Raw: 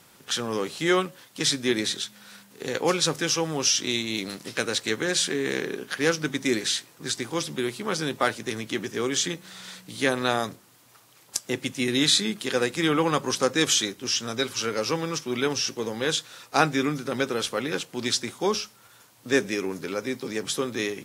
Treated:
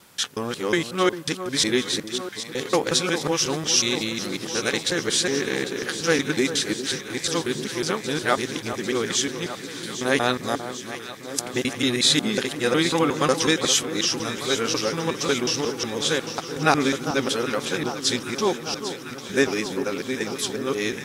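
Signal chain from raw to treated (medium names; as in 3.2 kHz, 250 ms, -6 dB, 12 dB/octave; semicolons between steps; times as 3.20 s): time reversed locally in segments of 182 ms; echo whose repeats swap between lows and highs 399 ms, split 1.4 kHz, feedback 86%, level -10.5 dB; trim +2 dB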